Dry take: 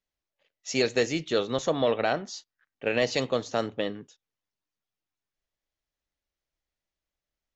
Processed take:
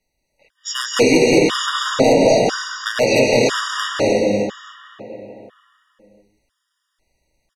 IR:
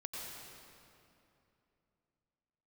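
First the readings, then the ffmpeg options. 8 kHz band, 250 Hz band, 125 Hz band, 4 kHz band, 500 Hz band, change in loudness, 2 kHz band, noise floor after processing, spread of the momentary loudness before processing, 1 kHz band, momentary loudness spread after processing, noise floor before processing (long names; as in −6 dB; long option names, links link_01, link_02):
can't be measured, +14.0 dB, +11.0 dB, +12.5 dB, +12.0 dB, +11.5 dB, +12.0 dB, −74 dBFS, 12 LU, +12.0 dB, 17 LU, below −85 dBFS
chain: -filter_complex "[0:a]asplit=2[link_01][link_02];[link_02]adelay=443,lowpass=frequency=3700:poles=1,volume=-18dB,asplit=2[link_03][link_04];[link_04]adelay=443,lowpass=frequency=3700:poles=1,volume=0.48,asplit=2[link_05][link_06];[link_06]adelay=443,lowpass=frequency=3700:poles=1,volume=0.48,asplit=2[link_07][link_08];[link_08]adelay=443,lowpass=frequency=3700:poles=1,volume=0.48[link_09];[link_01][link_03][link_05][link_07][link_09]amix=inputs=5:normalize=0,acrossover=split=190|3900[link_10][link_11][link_12];[link_10]acompressor=threshold=-48dB:ratio=4[link_13];[link_11]acompressor=threshold=-28dB:ratio=4[link_14];[link_12]acompressor=threshold=-44dB:ratio=4[link_15];[link_13][link_14][link_15]amix=inputs=3:normalize=0,aeval=exprs='0.0501*(abs(mod(val(0)/0.0501+3,4)-2)-1)':channel_layout=same[link_16];[1:a]atrim=start_sample=2205,afade=type=out:start_time=0.38:duration=0.01,atrim=end_sample=17199,asetrate=23373,aresample=44100[link_17];[link_16][link_17]afir=irnorm=-1:irlink=0,alimiter=level_in=20dB:limit=-1dB:release=50:level=0:latency=1,afftfilt=real='re*gt(sin(2*PI*1*pts/sr)*(1-2*mod(floor(b*sr/1024/950),2)),0)':imag='im*gt(sin(2*PI*1*pts/sr)*(1-2*mod(floor(b*sr/1024/950),2)),0)':win_size=1024:overlap=0.75,volume=-1dB"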